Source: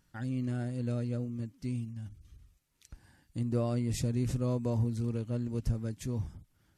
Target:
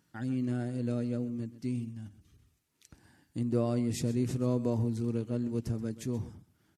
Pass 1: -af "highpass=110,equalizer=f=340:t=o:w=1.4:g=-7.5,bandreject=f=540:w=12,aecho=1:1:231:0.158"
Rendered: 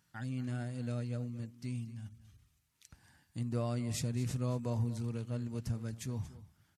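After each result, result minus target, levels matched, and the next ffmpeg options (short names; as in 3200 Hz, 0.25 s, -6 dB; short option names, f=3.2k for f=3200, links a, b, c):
echo 0.102 s late; 250 Hz band -3.0 dB
-af "highpass=110,equalizer=f=340:t=o:w=1.4:g=-7.5,bandreject=f=540:w=12,aecho=1:1:129:0.158"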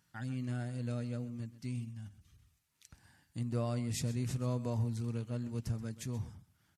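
250 Hz band -3.0 dB
-af "highpass=110,equalizer=f=340:t=o:w=1.4:g=4.5,bandreject=f=540:w=12,aecho=1:1:129:0.158"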